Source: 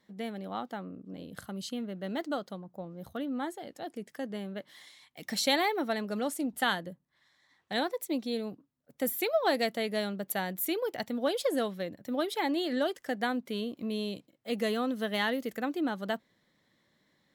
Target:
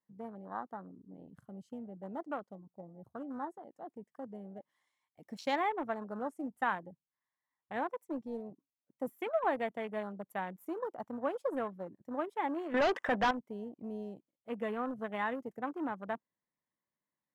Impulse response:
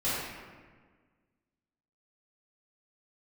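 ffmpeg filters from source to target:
-filter_complex "[0:a]asplit=2[link_01][link_02];[link_02]aeval=exprs='val(0)*gte(abs(val(0)),0.0376)':channel_layout=same,volume=-11dB[link_03];[link_01][link_03]amix=inputs=2:normalize=0,equalizer=frequency=1000:width_type=o:width=0.67:gain=9,equalizer=frequency=4000:width_type=o:width=0.67:gain=-11,equalizer=frequency=16000:width_type=o:width=0.67:gain=-7,asettb=1/sr,asplit=3[link_04][link_05][link_06];[link_04]atrim=end=12.744[link_07];[link_05]atrim=start=12.74:end=13.31,asetpts=PTS-STARTPTS,afade=type=in:duration=0.004:curve=qsin,afade=type=out:start_time=0.566:duration=0.004:curve=qsin,asplit=2[link_08][link_09];[link_09]highpass=frequency=720:poles=1,volume=30dB,asoftclip=type=tanh:threshold=-12.5dB[link_10];[link_08][link_10]amix=inputs=2:normalize=0,lowpass=frequency=3800:poles=1,volume=-6dB[link_11];[link_06]atrim=start=13.306[link_12];[link_07][link_11]acrossfade=duration=0.004:curve1=hsin:curve2=qsin[link_13];[link_13][link_12]acrossfade=duration=0.004:curve1=qsin:curve2=hsin,afwtdn=0.0158,volume=-8.5dB"

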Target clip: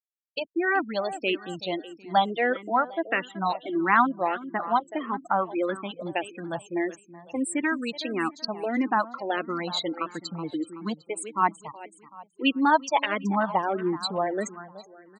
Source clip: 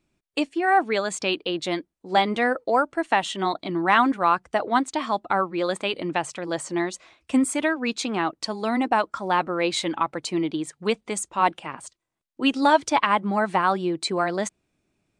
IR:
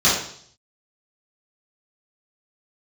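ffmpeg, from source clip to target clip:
-filter_complex "[0:a]afftfilt=real='re*gte(hypot(re,im),0.0631)':imag='im*gte(hypot(re,im),0.0631)':win_size=1024:overlap=0.75,asplit=2[link_01][link_02];[link_02]aecho=0:1:376|752|1128|1504:0.168|0.0672|0.0269|0.0107[link_03];[link_01][link_03]amix=inputs=2:normalize=0,asplit=2[link_04][link_05];[link_05]afreqshift=-1.6[link_06];[link_04][link_06]amix=inputs=2:normalize=1"

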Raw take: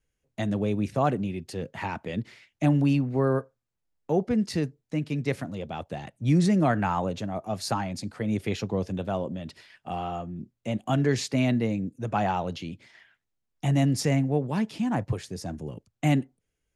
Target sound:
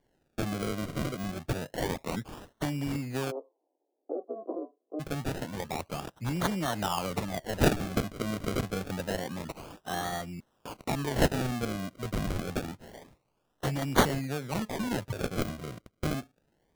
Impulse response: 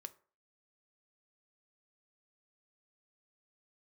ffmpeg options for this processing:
-filter_complex "[0:a]asettb=1/sr,asplit=3[link_01][link_02][link_03];[link_01]atrim=end=10.404[link_04];[link_02]atrim=start=10.4:end=10.85,asetpts=PTS-STARTPTS,afade=type=in:duration=0.004:curve=qsin,afade=type=out:start_time=0.446:duration=0.004:curve=qsin,aderivative[link_05];[link_03]atrim=start=10.846[link_06];[link_04][link_05]acrossfade=duration=0.004:curve1=hsin:curve2=qsin[link_07];[link_07][link_06]acrossfade=duration=0.004:curve1=qsin:curve2=hsin,acompressor=threshold=-26dB:ratio=6,crystalizer=i=9:c=0,acrusher=samples=34:mix=1:aa=0.000001:lfo=1:lforange=34:lforate=0.27,asplit=3[link_08][link_09][link_10];[link_08]afade=type=out:start_time=3.3:duration=0.02[link_11];[link_09]asuperpass=centerf=520:order=12:qfactor=0.78,afade=type=in:start_time=3.3:duration=0.02,afade=type=out:start_time=4.99:duration=0.02[link_12];[link_10]afade=type=in:start_time=4.99:duration=0.02[link_13];[link_11][link_12][link_13]amix=inputs=3:normalize=0,volume=-4dB"

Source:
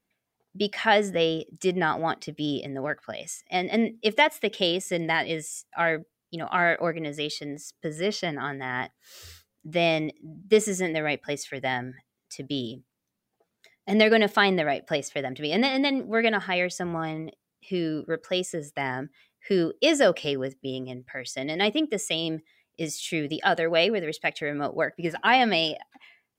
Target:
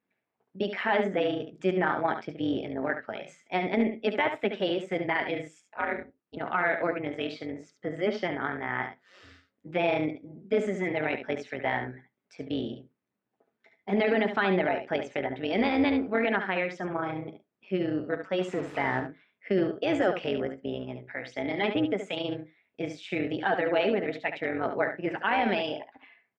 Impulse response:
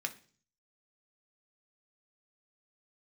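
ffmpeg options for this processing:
-filter_complex "[0:a]asettb=1/sr,asplit=3[link_01][link_02][link_03];[link_01]atrim=end=18.414[link_04];[link_02]atrim=start=18.41:end=19,asetpts=PTS-STARTPTS,afade=type=in:duration=0.004:curve=qsin,afade=type=out:start_time=0.586:duration=0.004:curve=qsin,aeval=exprs='val(0)+0.5*0.0282*sgn(val(0))':channel_layout=same[link_05];[link_03]atrim=start=18.996[link_06];[link_04][link_05]acrossfade=duration=0.004:curve1=hsin:curve2=qsin[link_07];[link_07][link_06]acrossfade=duration=0.004:curve1=qsin:curve2=hsin,tremolo=f=190:d=0.75,alimiter=limit=-17dB:level=0:latency=1:release=38,asettb=1/sr,asplit=3[link_08][link_09][link_10];[link_08]atrim=end=5.704[link_11];[link_09]atrim=start=5.7:end=6.37,asetpts=PTS-STARTPTS,afade=type=in:duration=0.004:curve=qsin,afade=type=out:start_time=0.666:duration=0.004:curve=qsin,aeval=exprs='val(0)*sin(2*PI*100*n/s)':channel_layout=same[link_12];[link_10]atrim=start=6.366[link_13];[link_11][link_12]acrossfade=duration=0.004:curve1=hsin:curve2=qsin[link_14];[link_14][link_13]acrossfade=duration=0.004:curve1=qsin:curve2=hsin,highpass=120,lowpass=2100,aecho=1:1:71:0.376,asplit=2[link_15][link_16];[1:a]atrim=start_sample=2205,atrim=end_sample=4410[link_17];[link_16][link_17]afir=irnorm=-1:irlink=0,volume=-6dB[link_18];[link_15][link_18]amix=inputs=2:normalize=0"

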